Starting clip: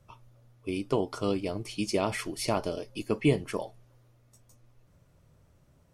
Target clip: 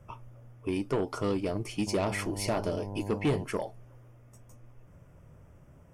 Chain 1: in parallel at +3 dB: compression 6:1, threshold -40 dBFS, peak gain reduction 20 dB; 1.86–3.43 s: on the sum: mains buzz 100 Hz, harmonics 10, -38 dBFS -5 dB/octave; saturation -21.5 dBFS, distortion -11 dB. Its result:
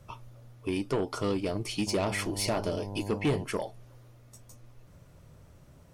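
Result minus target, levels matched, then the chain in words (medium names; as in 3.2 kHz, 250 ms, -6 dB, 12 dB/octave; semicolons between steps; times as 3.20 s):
4 kHz band +4.0 dB
in parallel at +3 dB: compression 6:1, threshold -40 dBFS, peak gain reduction 20 dB + low-pass 4.1 kHz 24 dB/octave; 1.86–3.43 s: on the sum: mains buzz 100 Hz, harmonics 10, -38 dBFS -5 dB/octave; saturation -21.5 dBFS, distortion -11 dB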